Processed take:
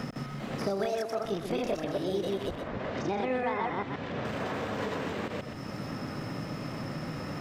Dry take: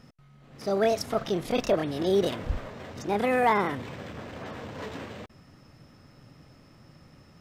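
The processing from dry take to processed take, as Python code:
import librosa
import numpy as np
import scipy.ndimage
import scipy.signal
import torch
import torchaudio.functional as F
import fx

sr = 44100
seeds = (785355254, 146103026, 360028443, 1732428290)

y = fx.reverse_delay(x, sr, ms=132, wet_db=-1.0)
y = fx.highpass(y, sr, hz=300.0, slope=12, at=(0.85, 1.25))
y = fx.air_absorb(y, sr, metres=140.0, at=(2.55, 4.25))
y = y + 10.0 ** (-10.0 / 20.0) * np.pad(y, (int(126 * sr / 1000.0), 0))[:len(y)]
y = fx.band_squash(y, sr, depth_pct=100)
y = y * 10.0 ** (-7.0 / 20.0)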